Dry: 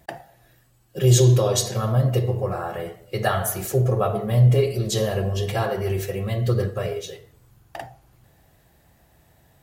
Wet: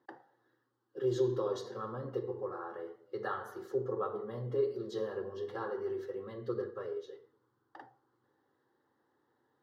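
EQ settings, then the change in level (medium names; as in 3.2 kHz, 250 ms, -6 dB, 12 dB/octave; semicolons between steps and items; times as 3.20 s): high-pass 170 Hz 24 dB/octave; distance through air 300 m; static phaser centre 660 Hz, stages 6; -8.0 dB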